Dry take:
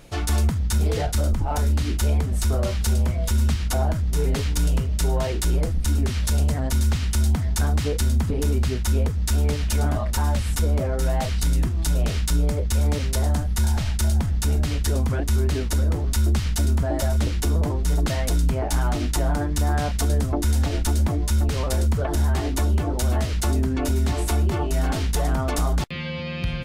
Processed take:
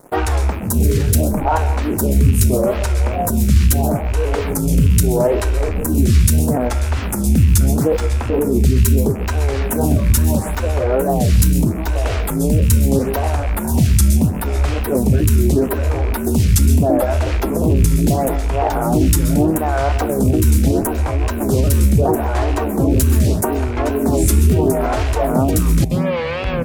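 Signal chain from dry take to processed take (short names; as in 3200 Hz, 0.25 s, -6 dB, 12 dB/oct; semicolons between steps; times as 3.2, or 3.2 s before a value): rattling part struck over -23 dBFS, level -27 dBFS; HPF 130 Hz 6 dB/oct; bell 3500 Hz -13.5 dB 2.7 oct; in parallel at +1 dB: negative-ratio compressor -30 dBFS; on the sum: wow and flutter 130 cents; crossover distortion -43 dBFS; on a send at -11 dB: reverb, pre-delay 0.118 s; on the sum: maximiser +13.5 dB; photocell phaser 0.77 Hz; gain -1.5 dB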